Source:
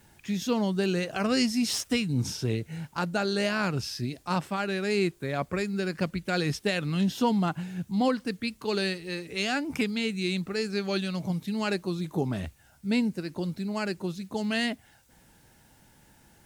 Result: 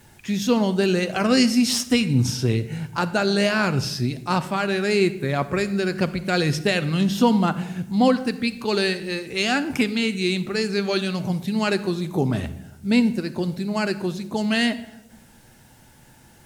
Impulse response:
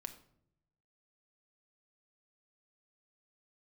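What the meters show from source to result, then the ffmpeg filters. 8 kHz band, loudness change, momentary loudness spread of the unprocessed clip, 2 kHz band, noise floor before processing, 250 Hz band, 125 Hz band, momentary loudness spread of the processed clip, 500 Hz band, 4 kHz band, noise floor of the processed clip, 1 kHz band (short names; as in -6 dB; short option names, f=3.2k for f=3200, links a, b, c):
+6.5 dB, +7.0 dB, 7 LU, +7.0 dB, -59 dBFS, +7.0 dB, +7.0 dB, 7 LU, +7.0 dB, +6.5 dB, -52 dBFS, +6.5 dB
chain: -filter_complex "[0:a]asplit=2[a][b];[1:a]atrim=start_sample=2205,asetrate=27783,aresample=44100[c];[b][c]afir=irnorm=-1:irlink=0,volume=3dB[d];[a][d]amix=inputs=2:normalize=0"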